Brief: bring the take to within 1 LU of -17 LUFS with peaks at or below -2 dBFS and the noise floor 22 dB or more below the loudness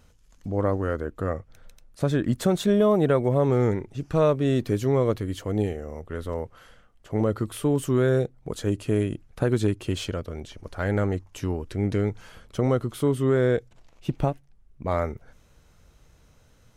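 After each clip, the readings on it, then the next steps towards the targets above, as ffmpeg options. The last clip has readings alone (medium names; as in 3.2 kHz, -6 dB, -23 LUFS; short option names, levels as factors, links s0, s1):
loudness -25.5 LUFS; peak level -9.0 dBFS; loudness target -17.0 LUFS
-> -af "volume=2.66,alimiter=limit=0.794:level=0:latency=1"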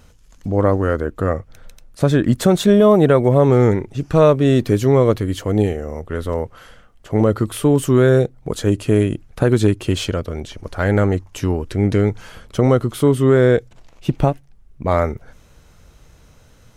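loudness -17.0 LUFS; peak level -2.0 dBFS; noise floor -50 dBFS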